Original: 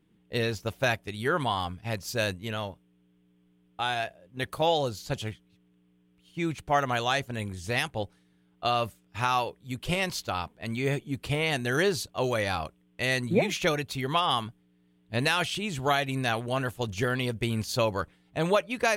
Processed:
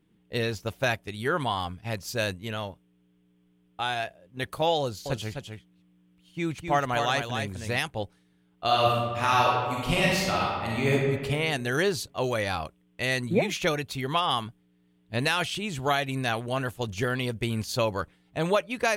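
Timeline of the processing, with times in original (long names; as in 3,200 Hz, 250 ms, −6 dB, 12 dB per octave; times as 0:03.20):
0:04.80–0:07.78: single-tap delay 256 ms −6 dB
0:08.65–0:10.93: thrown reverb, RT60 1.6 s, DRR −4.5 dB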